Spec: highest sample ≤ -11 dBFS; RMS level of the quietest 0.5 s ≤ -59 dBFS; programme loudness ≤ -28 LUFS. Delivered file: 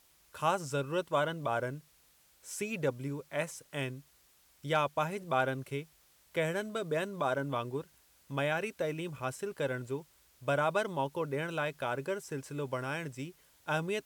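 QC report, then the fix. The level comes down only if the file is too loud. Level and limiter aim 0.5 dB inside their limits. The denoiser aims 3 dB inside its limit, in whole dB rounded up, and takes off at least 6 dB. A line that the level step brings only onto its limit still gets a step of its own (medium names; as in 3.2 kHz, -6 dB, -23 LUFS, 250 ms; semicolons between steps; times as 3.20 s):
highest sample -17.0 dBFS: pass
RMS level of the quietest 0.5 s -66 dBFS: pass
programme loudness -35.0 LUFS: pass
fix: none needed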